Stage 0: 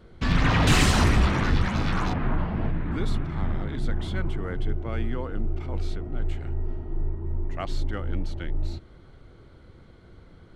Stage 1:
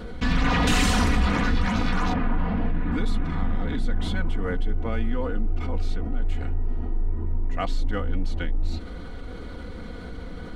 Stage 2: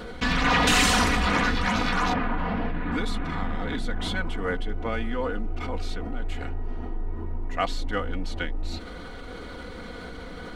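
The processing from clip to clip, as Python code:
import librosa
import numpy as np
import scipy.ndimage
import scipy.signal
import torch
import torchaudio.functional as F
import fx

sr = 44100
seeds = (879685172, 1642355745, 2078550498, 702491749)

y1 = x + 0.69 * np.pad(x, (int(4.1 * sr / 1000.0), 0))[:len(x)]
y1 = fx.env_flatten(y1, sr, amount_pct=50)
y1 = F.gain(torch.from_numpy(y1), -4.0).numpy()
y2 = fx.low_shelf(y1, sr, hz=300.0, db=-10.5)
y2 = F.gain(torch.from_numpy(y2), 4.5).numpy()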